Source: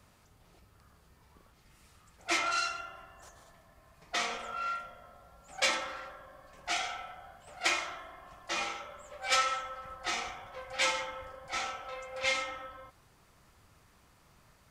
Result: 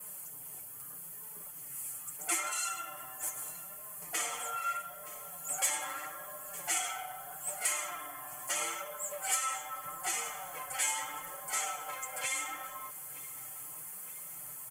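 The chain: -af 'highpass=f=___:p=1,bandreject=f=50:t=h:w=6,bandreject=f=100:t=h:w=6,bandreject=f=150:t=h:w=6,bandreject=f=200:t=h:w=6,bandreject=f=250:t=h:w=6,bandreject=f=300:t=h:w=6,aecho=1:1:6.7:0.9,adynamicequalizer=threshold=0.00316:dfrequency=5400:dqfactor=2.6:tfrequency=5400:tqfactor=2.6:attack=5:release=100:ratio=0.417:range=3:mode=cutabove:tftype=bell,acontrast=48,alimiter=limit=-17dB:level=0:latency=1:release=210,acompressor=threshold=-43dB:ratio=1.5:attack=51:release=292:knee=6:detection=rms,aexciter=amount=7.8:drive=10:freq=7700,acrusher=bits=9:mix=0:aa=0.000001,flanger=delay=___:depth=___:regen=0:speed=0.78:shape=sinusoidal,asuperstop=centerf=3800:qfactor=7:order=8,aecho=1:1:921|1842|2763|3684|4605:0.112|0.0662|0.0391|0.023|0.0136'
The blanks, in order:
200, 4.7, 3.3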